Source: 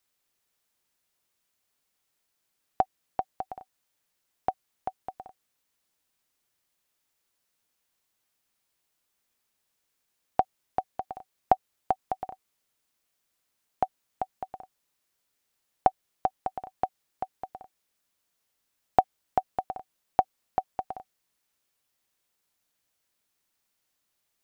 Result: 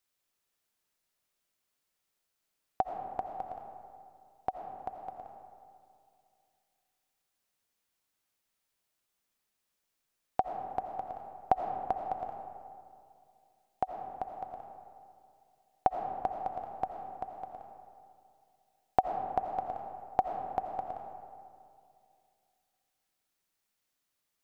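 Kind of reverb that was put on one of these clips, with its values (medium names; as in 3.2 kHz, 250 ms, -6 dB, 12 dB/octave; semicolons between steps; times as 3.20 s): algorithmic reverb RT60 2.4 s, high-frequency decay 0.45×, pre-delay 45 ms, DRR 4 dB; trim -5 dB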